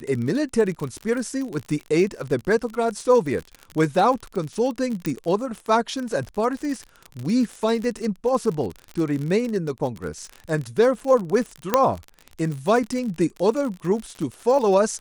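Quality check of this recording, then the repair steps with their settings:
surface crackle 43 per second −27 dBFS
0:05.06: click −12 dBFS
0:11.74: click −3 dBFS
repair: click removal

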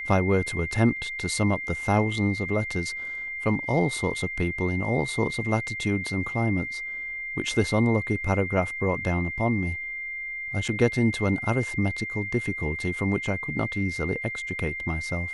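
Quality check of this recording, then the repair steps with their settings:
whistle 2,100 Hz −31 dBFS
0:10.68–0:10.69: drop-out 6.4 ms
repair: notch filter 2,100 Hz, Q 30
repair the gap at 0:10.68, 6.4 ms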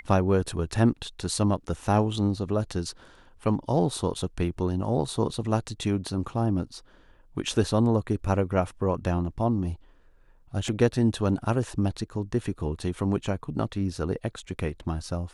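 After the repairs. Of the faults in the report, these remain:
none of them is left

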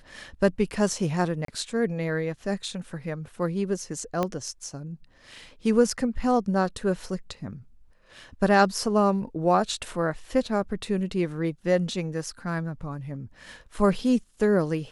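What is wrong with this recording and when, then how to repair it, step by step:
0:01.45–0:01.48: drop-out 33 ms
0:04.23: click −13 dBFS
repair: click removal
repair the gap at 0:01.45, 33 ms

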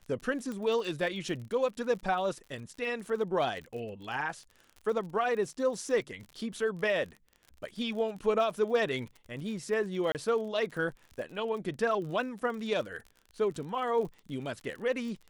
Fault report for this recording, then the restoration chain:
surface crackle 45 per second −40 dBFS
0:00.52: click −26 dBFS
0:10.12–0:10.15: drop-out 28 ms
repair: click removal
repair the gap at 0:10.12, 28 ms

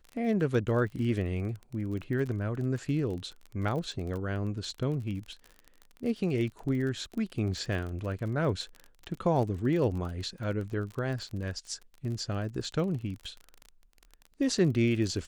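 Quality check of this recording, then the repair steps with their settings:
surface crackle 31 per second −36 dBFS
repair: click removal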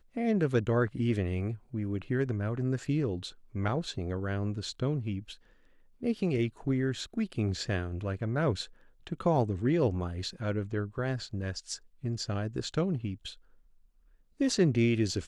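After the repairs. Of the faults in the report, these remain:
none of them is left

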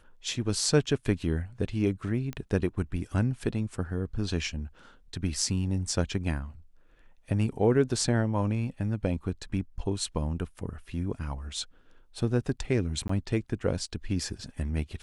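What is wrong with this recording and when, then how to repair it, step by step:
0:02.33: click −22 dBFS
0:13.08–0:13.09: drop-out 14 ms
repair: click removal
repair the gap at 0:13.08, 14 ms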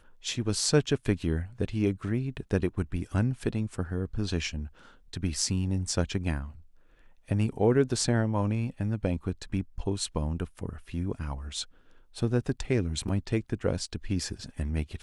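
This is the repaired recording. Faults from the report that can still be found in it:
none of them is left

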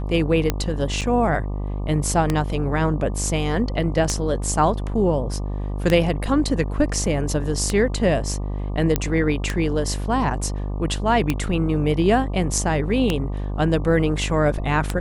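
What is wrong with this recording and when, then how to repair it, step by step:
mains buzz 50 Hz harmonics 24 −26 dBFS
scratch tick 33 1/3 rpm −6 dBFS
0:01.01–0:01.02: drop-out 7.1 ms
0:08.96: click −5 dBFS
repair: click removal
hum removal 50 Hz, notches 24
repair the gap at 0:01.01, 7.1 ms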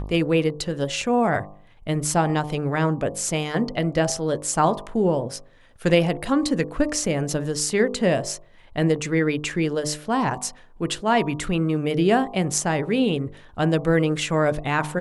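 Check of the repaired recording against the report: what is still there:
none of them is left

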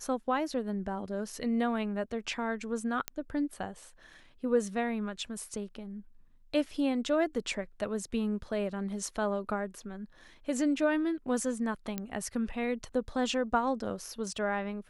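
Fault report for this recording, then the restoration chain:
0:03.08: click −14 dBFS
0:11.98: click −19 dBFS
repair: click removal

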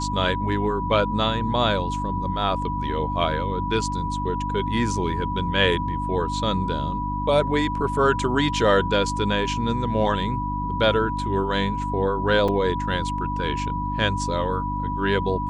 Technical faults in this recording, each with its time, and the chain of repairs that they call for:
mains hum 50 Hz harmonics 6 −29 dBFS
whistle 980 Hz −27 dBFS
0:12.48: drop-out 4.5 ms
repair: hum removal 50 Hz, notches 6
notch filter 980 Hz, Q 30
repair the gap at 0:12.48, 4.5 ms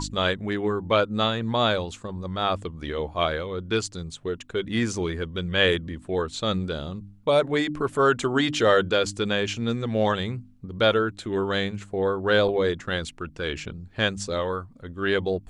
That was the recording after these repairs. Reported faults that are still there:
none of them is left

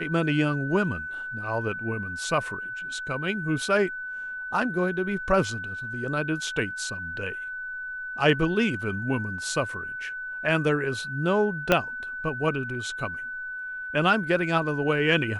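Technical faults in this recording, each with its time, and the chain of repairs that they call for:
whistle 1,500 Hz −32 dBFS
0:11.72: click −6 dBFS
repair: click removal
notch filter 1,500 Hz, Q 30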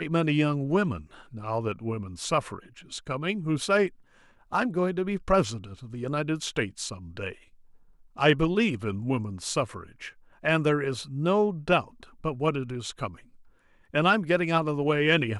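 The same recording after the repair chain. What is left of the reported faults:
0:11.72: click

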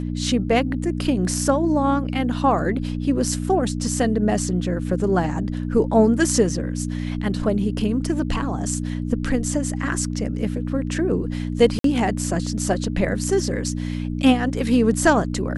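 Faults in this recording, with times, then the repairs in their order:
mains hum 60 Hz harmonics 5 −26 dBFS
0:11.79–0:11.84: drop-out 53 ms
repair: hum removal 60 Hz, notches 5
repair the gap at 0:11.79, 53 ms

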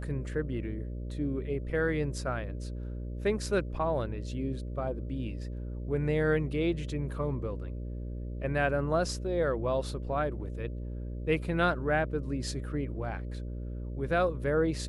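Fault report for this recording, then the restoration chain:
mains buzz 60 Hz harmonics 10 −37 dBFS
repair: hum removal 60 Hz, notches 10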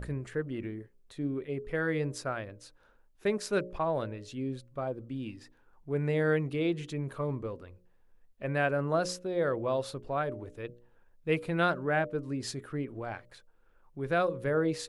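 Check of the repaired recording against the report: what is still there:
none of them is left

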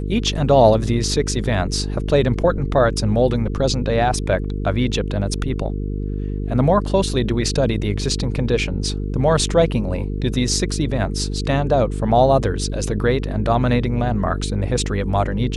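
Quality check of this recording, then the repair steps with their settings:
mains buzz 50 Hz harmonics 9 −24 dBFS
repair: hum removal 50 Hz, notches 9

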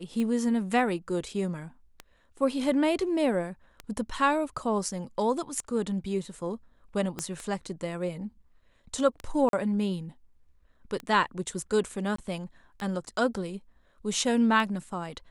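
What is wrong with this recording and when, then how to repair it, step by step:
scratch tick 33 1/3 rpm −21 dBFS
0:07.19: click −17 dBFS
0:09.49–0:09.53: drop-out 42 ms
0:12.16–0:12.18: drop-out 24 ms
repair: click removal
repair the gap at 0:09.49, 42 ms
repair the gap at 0:12.16, 24 ms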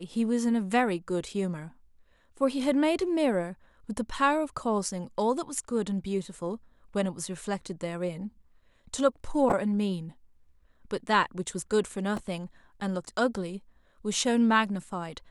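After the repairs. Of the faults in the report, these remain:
0:07.19: click

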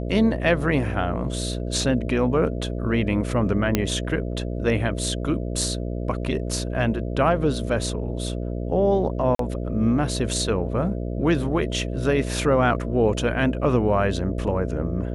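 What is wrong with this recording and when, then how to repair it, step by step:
mains buzz 60 Hz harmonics 11 −28 dBFS
0:03.75: click −5 dBFS
0:09.35–0:09.39: drop-out 43 ms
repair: click removal
hum removal 60 Hz, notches 11
repair the gap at 0:09.35, 43 ms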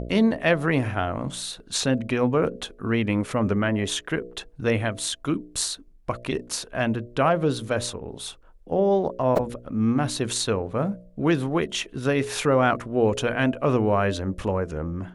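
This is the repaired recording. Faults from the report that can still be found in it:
none of them is left

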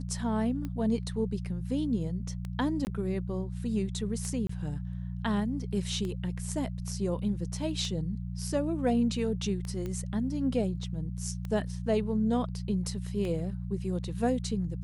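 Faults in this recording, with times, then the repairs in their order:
mains hum 60 Hz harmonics 3 −36 dBFS
scratch tick 33 1/3 rpm −24 dBFS
0:02.85–0:02.87: drop-out 19 ms
0:04.47–0:04.49: drop-out 24 ms
0:09.86: click −24 dBFS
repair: click removal
hum removal 60 Hz, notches 3
repair the gap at 0:02.85, 19 ms
repair the gap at 0:04.47, 24 ms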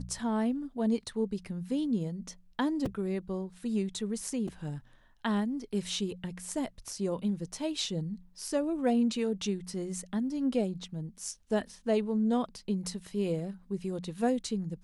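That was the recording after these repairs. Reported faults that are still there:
none of them is left

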